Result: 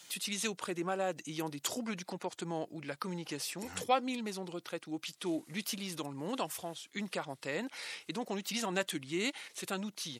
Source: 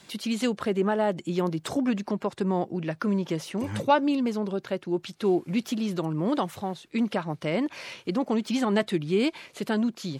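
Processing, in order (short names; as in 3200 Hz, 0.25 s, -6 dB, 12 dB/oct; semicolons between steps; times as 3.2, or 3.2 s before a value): RIAA curve recording; pitch shift -2 st; gain -7.5 dB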